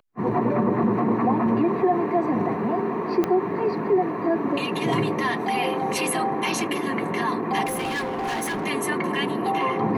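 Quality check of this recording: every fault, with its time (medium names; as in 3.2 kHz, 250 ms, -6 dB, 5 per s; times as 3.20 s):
3.24 s: pop -11 dBFS
7.65–8.66 s: clipped -24 dBFS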